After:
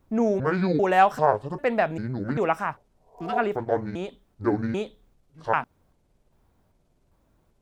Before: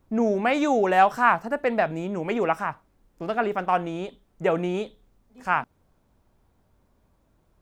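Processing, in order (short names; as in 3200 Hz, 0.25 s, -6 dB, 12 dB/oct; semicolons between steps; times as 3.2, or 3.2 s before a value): trilling pitch shifter -8 st, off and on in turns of 0.395 s; spectral repair 2.94–3.36, 400–1100 Hz both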